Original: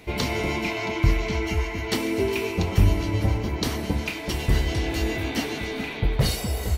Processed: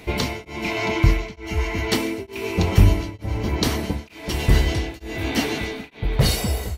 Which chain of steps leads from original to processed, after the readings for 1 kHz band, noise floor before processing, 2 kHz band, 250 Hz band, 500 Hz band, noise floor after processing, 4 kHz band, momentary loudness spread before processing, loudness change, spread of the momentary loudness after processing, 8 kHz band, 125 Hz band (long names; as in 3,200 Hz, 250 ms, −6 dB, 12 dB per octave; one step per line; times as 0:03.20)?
+2.0 dB, −33 dBFS, +1.5 dB, +2.0 dB, +1.0 dB, −44 dBFS, +3.0 dB, 6 LU, +2.5 dB, 10 LU, +3.5 dB, +3.0 dB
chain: tremolo along a rectified sine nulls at 1.1 Hz
level +5 dB